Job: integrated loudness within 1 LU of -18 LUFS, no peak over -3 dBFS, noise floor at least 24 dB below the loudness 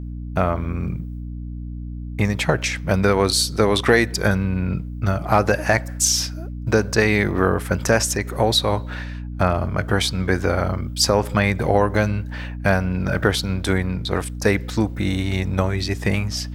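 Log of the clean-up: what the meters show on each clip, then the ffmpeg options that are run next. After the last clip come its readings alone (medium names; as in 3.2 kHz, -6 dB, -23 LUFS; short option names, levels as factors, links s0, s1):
hum 60 Hz; highest harmonic 300 Hz; hum level -28 dBFS; loudness -20.5 LUFS; peak level -2.5 dBFS; loudness target -18.0 LUFS
-> -af "bandreject=f=60:t=h:w=6,bandreject=f=120:t=h:w=6,bandreject=f=180:t=h:w=6,bandreject=f=240:t=h:w=6,bandreject=f=300:t=h:w=6"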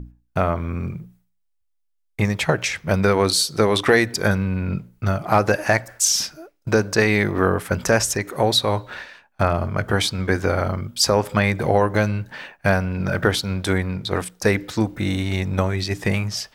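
hum not found; loudness -21.0 LUFS; peak level -3.0 dBFS; loudness target -18.0 LUFS
-> -af "volume=1.41,alimiter=limit=0.708:level=0:latency=1"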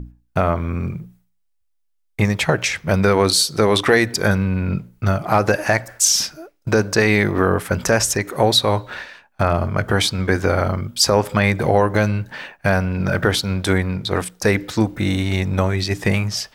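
loudness -18.5 LUFS; peak level -3.0 dBFS; noise floor -66 dBFS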